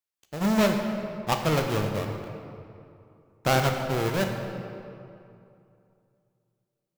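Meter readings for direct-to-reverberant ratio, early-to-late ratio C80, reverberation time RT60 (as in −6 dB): 3.5 dB, 5.5 dB, 2.6 s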